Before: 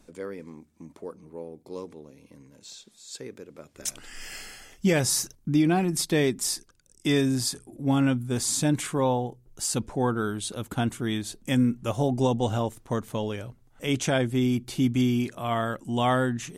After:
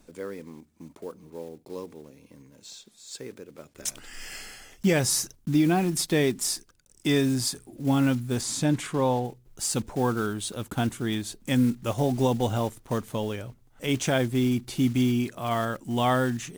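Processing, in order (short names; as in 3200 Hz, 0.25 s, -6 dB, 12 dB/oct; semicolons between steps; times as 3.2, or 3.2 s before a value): block floating point 5-bit; 8.41–9.25 high shelf 8400 Hz -10.5 dB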